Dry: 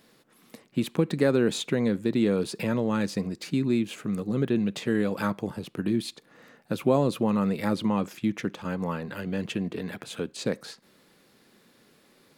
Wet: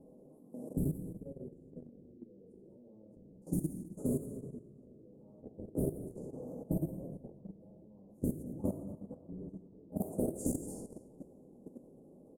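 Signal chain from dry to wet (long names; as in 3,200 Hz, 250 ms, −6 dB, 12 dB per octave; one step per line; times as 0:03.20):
gate with flip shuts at −24 dBFS, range −38 dB
dynamic equaliser 120 Hz, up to −3 dB, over −54 dBFS, Q 1.4
inverse Chebyshev band-stop filter 1,700–3,800 Hz, stop band 70 dB
convolution reverb, pre-delay 3 ms, DRR −7.5 dB
output level in coarse steps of 13 dB
low-pass that shuts in the quiet parts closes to 2,100 Hz, open at −39.5 dBFS
high-shelf EQ 9,400 Hz +12 dB
single-tap delay 220 ms −19 dB
level +8 dB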